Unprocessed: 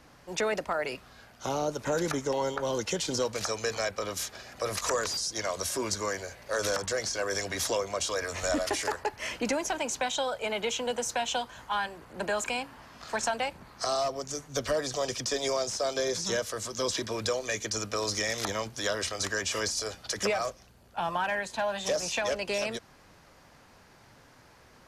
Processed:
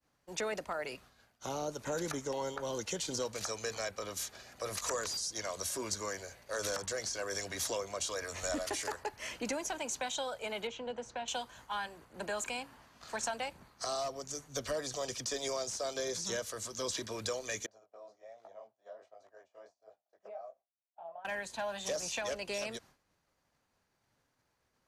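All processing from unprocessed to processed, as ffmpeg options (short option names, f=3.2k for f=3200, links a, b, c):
-filter_complex "[0:a]asettb=1/sr,asplit=3[a][b][c];[a]atrim=end=10.674[d];[b]atrim=start=10.67:end=11.28,asetpts=PTS-STARTPTS,afade=t=in:d=0.004:c=qsin,afade=t=out:st=0.606:d=0.004:c=qsin,lowpass=3k,equalizer=f=2.1k:w=0.39:g=-4[e];[c]atrim=start=11.276[f];[d][e]acrossfade=d=0.004:c1=hsin:c2=qsin[g];[g][f]acrossfade=d=0.004:c1=qsin:c2=hsin,asettb=1/sr,asplit=3[h][i][j];[h]atrim=end=17.664[k];[i]atrim=start=17.66:end=21.25,asetpts=PTS-STARTPTS,afade=t=in:d=0.004:c=qsin,afade=t=out:st=3.586:d=0.004:c=qsin,flanger=delay=18:depth=6.5:speed=1.3,bandpass=f=670:t=q:w=5.8[l];[j]atrim=start=21.246[m];[k][l]acrossfade=d=0.004:c1=hsin:c2=qsin[n];[n][m]acrossfade=d=0.004:c1=qsin:c2=hsin,agate=range=-33dB:threshold=-46dB:ratio=3:detection=peak,bass=f=250:g=0,treble=f=4k:g=4,bandreject=f=5.2k:w=18,volume=-7.5dB"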